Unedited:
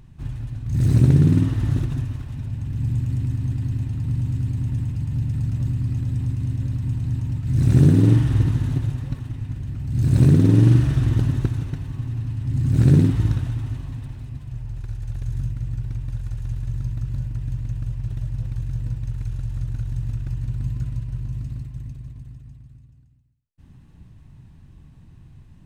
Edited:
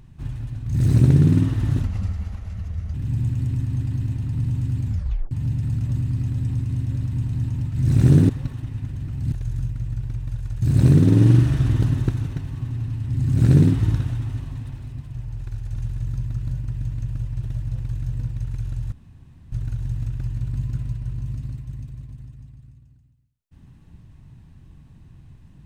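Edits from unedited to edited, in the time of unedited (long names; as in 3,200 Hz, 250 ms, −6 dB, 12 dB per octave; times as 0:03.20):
0:01.82–0:02.65: play speed 74%
0:04.56: tape stop 0.46 s
0:08.00–0:08.96: remove
0:15.13–0:16.43: move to 0:09.99
0:19.59: splice in room tone 0.60 s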